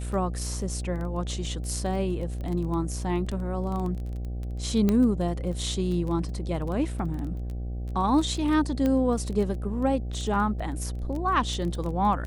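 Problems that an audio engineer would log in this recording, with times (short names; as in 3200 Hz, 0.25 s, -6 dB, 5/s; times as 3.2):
buzz 60 Hz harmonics 13 -32 dBFS
crackle 17/s -31 dBFS
4.89 pop -12 dBFS
8.86 pop -15 dBFS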